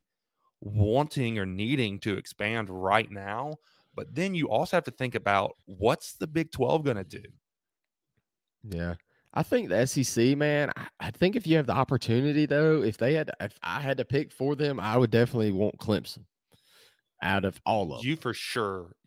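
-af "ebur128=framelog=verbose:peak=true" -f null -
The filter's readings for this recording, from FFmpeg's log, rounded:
Integrated loudness:
  I:         -28.1 LUFS
  Threshold: -38.6 LUFS
Loudness range:
  LRA:         5.8 LU
  Threshold: -48.7 LUFS
  LRA low:   -32.0 LUFS
  LRA high:  -26.2 LUFS
True peak:
  Peak:       -6.6 dBFS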